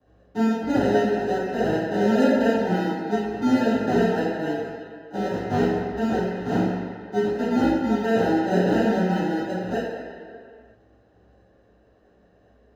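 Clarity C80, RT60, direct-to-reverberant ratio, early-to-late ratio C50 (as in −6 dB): 1.0 dB, non-exponential decay, −12.5 dB, −1.0 dB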